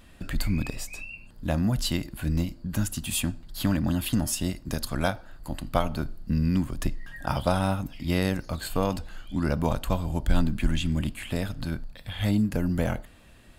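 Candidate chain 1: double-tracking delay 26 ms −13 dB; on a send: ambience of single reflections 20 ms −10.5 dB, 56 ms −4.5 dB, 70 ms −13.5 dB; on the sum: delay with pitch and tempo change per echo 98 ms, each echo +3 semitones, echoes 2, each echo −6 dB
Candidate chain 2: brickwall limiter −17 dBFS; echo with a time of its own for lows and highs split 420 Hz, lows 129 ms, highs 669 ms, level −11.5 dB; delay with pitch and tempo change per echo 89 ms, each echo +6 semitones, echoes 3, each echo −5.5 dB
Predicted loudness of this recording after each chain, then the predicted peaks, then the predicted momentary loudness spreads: −26.0, −29.5 LKFS; −6.0, −13.0 dBFS; 7, 6 LU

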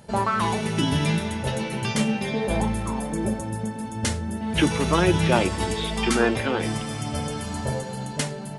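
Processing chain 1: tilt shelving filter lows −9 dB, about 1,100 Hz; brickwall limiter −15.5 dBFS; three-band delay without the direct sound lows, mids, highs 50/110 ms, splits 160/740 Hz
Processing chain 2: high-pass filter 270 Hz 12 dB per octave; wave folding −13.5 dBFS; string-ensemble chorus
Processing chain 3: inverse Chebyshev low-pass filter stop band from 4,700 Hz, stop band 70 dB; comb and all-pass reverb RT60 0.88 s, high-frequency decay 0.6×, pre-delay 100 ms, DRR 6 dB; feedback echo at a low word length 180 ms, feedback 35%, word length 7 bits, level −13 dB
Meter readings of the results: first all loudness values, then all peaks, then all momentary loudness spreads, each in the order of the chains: −26.5, −30.0, −25.0 LKFS; −13.0, −13.0, −7.0 dBFS; 7, 9, 8 LU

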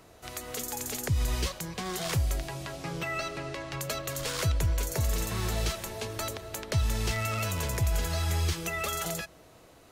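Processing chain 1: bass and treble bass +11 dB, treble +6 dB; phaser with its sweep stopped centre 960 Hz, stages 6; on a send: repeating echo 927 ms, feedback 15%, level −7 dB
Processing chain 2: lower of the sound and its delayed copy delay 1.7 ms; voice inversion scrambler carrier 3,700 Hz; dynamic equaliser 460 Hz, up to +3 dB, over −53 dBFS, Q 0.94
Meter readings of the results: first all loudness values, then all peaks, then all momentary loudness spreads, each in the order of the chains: −24.0, −27.0 LKFS; −7.5, −14.5 dBFS; 13, 14 LU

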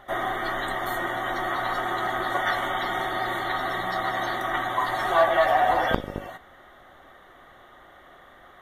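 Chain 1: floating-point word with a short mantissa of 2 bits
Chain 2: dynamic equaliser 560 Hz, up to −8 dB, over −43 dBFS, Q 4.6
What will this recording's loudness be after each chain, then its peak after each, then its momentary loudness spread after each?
−25.5, −26.0 LKFS; −2.5, −3.5 dBFS; 8, 7 LU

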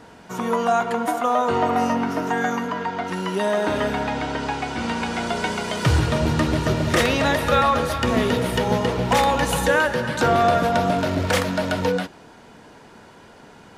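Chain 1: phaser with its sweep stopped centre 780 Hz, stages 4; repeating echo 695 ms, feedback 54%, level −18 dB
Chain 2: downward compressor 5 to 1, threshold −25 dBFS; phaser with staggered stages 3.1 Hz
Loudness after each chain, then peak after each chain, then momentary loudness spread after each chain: −24.5, −31.5 LKFS; −8.5, −17.0 dBFS; 9, 12 LU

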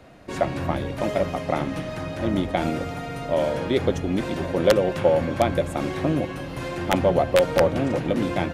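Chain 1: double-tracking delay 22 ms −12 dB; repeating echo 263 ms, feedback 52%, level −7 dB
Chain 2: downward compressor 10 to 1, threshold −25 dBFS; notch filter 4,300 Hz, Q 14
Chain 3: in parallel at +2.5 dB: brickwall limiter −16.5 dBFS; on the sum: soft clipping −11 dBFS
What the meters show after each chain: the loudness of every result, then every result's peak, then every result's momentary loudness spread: −22.5, −30.5, −20.5 LKFS; −5.5, −12.5, −11.0 dBFS; 8, 3, 6 LU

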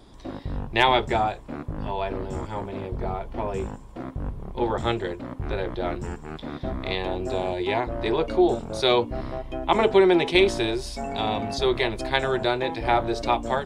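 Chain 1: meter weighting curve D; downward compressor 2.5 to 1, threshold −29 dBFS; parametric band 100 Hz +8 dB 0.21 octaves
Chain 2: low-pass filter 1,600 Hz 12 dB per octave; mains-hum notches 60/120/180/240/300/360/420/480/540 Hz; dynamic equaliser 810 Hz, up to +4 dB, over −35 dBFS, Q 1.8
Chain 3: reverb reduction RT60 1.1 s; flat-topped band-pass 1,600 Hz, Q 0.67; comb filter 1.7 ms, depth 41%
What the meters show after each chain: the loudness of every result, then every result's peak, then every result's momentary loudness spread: −30.5, −25.0, −30.5 LKFS; −8.0, −4.0, −5.5 dBFS; 10, 15, 20 LU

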